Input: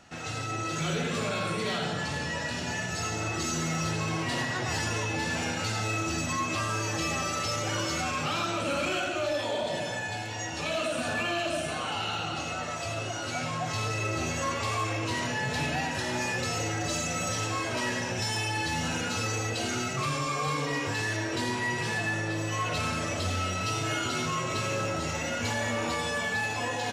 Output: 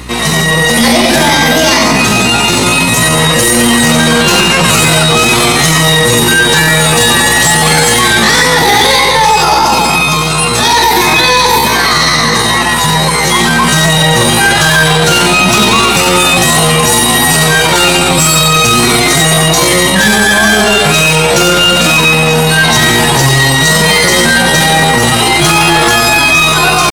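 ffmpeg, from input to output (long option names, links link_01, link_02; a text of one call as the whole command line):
ffmpeg -i in.wav -af "apsyclip=27.5dB,asetrate=64194,aresample=44100,atempo=0.686977,aeval=exprs='val(0)+0.0708*(sin(2*PI*60*n/s)+sin(2*PI*2*60*n/s)/2+sin(2*PI*3*60*n/s)/3+sin(2*PI*4*60*n/s)/4+sin(2*PI*5*60*n/s)/5)':channel_layout=same,volume=-2.5dB" out.wav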